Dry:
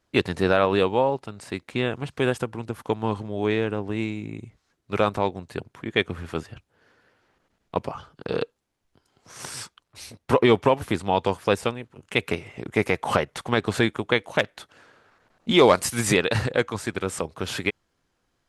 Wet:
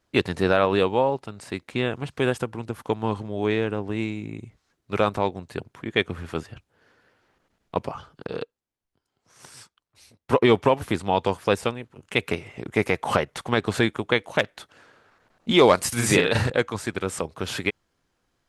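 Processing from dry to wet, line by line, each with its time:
0:08.27–0:10.42: expander for the loud parts, over −39 dBFS
0:15.88–0:16.50: double-tracking delay 41 ms −3 dB

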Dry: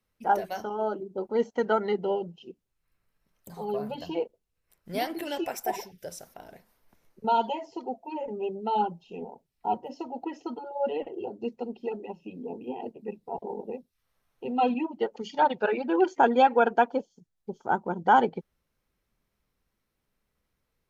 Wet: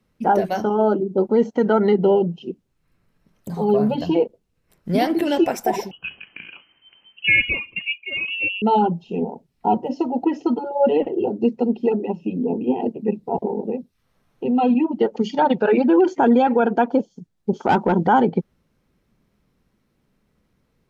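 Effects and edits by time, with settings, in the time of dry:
0:05.91–0:08.62: voice inversion scrambler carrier 3,100 Hz
0:13.47–0:14.91: downward compressor 1.5 to 1, threshold −39 dBFS
0:17.53–0:18.07: mid-hump overdrive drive 18 dB, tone 4,000 Hz, clips at −13 dBFS
whole clip: parametric band 200 Hz +10 dB 2.3 octaves; brickwall limiter −16 dBFS; high-shelf EQ 10,000 Hz −9.5 dB; level +8 dB

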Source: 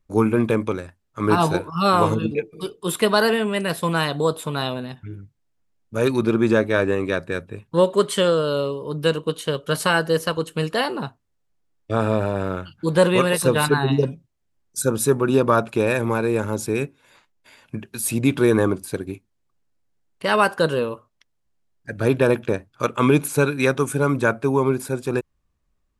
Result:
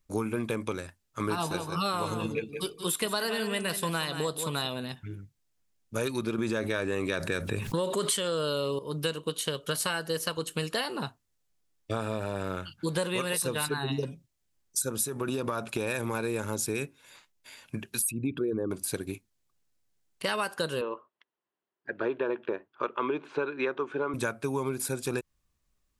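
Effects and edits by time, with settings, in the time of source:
0:01.33–0:04.67: single-tap delay 178 ms −11 dB
0:06.38–0:08.79: envelope flattener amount 70%
0:14.89–0:16.14: downward compressor, threshold −17 dBFS
0:18.02–0:18.71: spectral envelope exaggerated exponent 2
0:20.81–0:24.14: loudspeaker in its box 320–2,800 Hz, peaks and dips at 370 Hz +8 dB, 1,000 Hz +5 dB, 2,300 Hz −6 dB
whole clip: high-shelf EQ 2,500 Hz +11 dB; downward compressor, threshold −22 dBFS; level −5 dB

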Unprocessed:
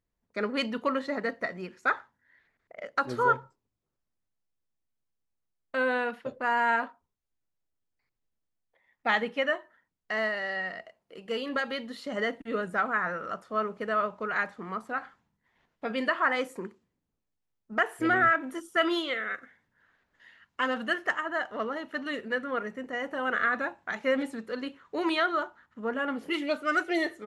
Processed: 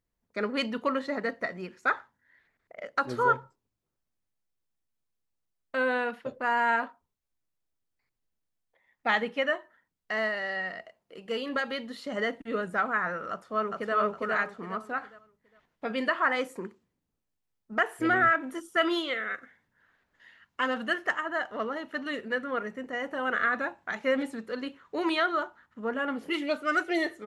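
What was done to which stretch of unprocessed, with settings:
0:13.30–0:13.95: delay throw 410 ms, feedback 30%, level −1.5 dB

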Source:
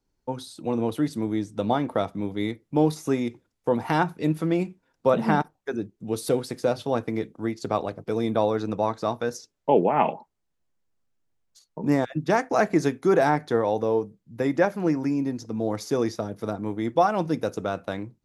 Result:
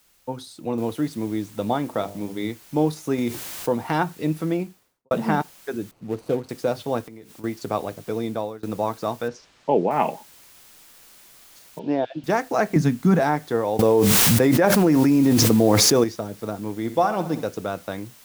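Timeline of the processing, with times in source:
0:00.78: noise floor change −61 dB −50 dB
0:01.85–0:02.50: hum removal 50.06 Hz, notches 20
0:03.18–0:03.70: envelope flattener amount 50%
0:04.44–0:05.11: fade out and dull
0:05.91–0:06.49: running median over 25 samples
0:07.01–0:07.44: downward compressor 8 to 1, threshold −38 dBFS
0:07.99–0:08.63: fade out equal-power, to −24 dB
0:09.28–0:09.91: high-frequency loss of the air 130 metres
0:11.79–0:12.24: loudspeaker in its box 150–4,200 Hz, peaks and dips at 150 Hz −7 dB, 220 Hz −8 dB, 670 Hz +6 dB, 1,200 Hz −10 dB, 2,000 Hz −9 dB, 3,000 Hz +5 dB
0:12.76–0:13.20: low shelf with overshoot 280 Hz +8 dB, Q 3
0:13.79–0:16.04: envelope flattener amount 100%
0:16.78–0:17.46: repeating echo 63 ms, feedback 56%, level −12.5 dB

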